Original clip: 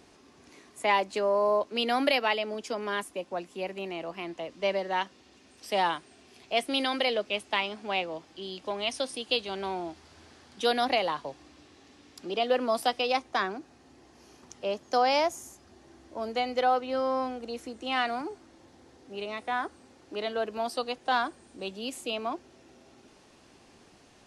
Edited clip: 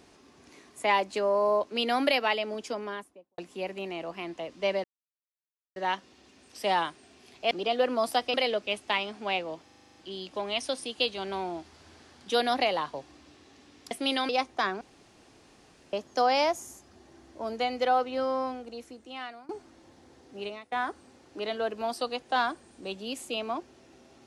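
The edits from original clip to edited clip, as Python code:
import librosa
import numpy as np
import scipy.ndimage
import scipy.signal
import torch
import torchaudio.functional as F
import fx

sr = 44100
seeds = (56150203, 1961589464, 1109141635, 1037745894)

y = fx.studio_fade_out(x, sr, start_s=2.61, length_s=0.77)
y = fx.edit(y, sr, fx.insert_silence(at_s=4.84, length_s=0.92),
    fx.swap(start_s=6.59, length_s=0.38, other_s=12.22, other_length_s=0.83),
    fx.stutter(start_s=8.27, slice_s=0.04, count=9),
    fx.room_tone_fill(start_s=13.57, length_s=1.12),
    fx.fade_out_to(start_s=16.94, length_s=1.31, floor_db=-21.0),
    fx.fade_out_to(start_s=19.23, length_s=0.25, curve='qua', floor_db=-14.5), tone=tone)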